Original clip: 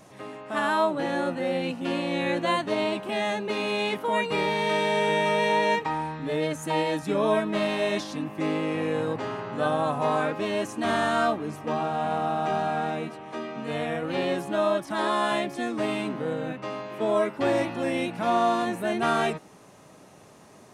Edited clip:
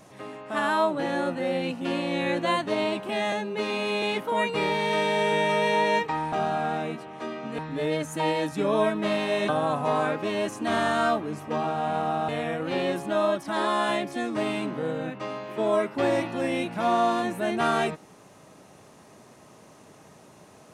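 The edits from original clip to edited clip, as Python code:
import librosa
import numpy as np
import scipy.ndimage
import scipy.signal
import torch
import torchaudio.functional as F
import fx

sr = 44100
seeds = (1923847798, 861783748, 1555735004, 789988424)

y = fx.edit(x, sr, fx.stretch_span(start_s=3.32, length_s=0.47, factor=1.5),
    fx.cut(start_s=7.99, length_s=1.66),
    fx.move(start_s=12.45, length_s=1.26, to_s=6.09), tone=tone)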